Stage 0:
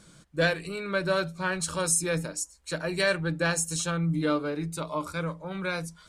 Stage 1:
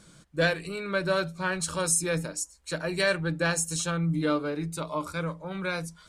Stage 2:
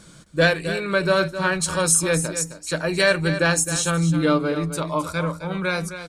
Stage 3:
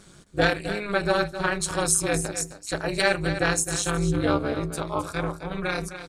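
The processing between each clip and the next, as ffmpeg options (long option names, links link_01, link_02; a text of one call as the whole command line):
ffmpeg -i in.wav -af anull out.wav
ffmpeg -i in.wav -af "aecho=1:1:263:0.282,volume=7dB" out.wav
ffmpeg -i in.wav -af "tremolo=f=210:d=0.919" out.wav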